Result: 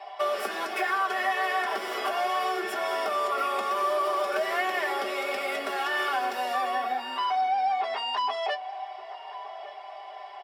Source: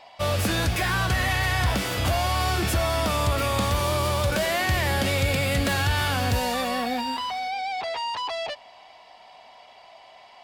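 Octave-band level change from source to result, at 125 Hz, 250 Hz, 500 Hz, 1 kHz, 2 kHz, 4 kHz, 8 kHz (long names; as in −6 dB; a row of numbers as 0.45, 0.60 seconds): below −40 dB, −12.0 dB, −2.0 dB, +1.5 dB, −3.0 dB, −7.0 dB, −13.0 dB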